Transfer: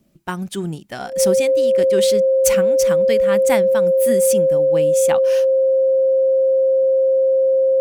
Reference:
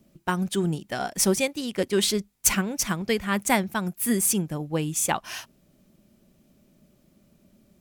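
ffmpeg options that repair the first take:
-af "bandreject=f=530:w=30"

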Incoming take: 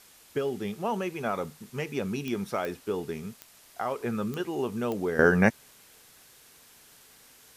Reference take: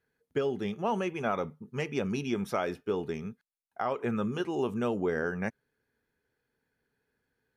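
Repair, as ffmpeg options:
-af "adeclick=t=4,afwtdn=0.002,asetnsamples=n=441:p=0,asendcmd='5.19 volume volume -12dB',volume=1"

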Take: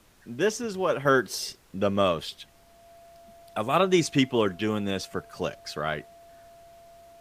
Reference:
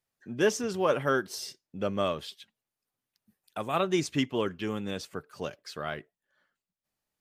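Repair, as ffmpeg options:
-af "bandreject=f=680:w=30,agate=range=0.0891:threshold=0.00447,asetnsamples=n=441:p=0,asendcmd='1.05 volume volume -5.5dB',volume=1"

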